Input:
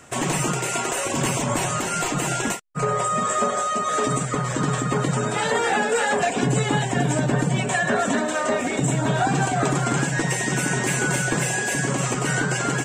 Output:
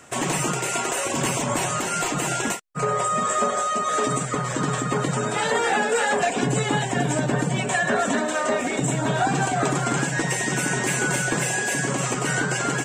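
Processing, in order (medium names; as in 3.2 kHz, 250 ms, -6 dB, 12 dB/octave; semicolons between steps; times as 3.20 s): bass shelf 130 Hz -6.5 dB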